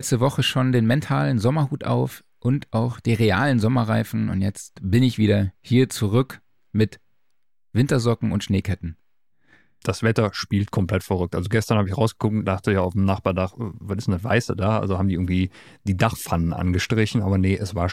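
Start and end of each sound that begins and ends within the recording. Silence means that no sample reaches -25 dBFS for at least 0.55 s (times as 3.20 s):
7.75–8.90 s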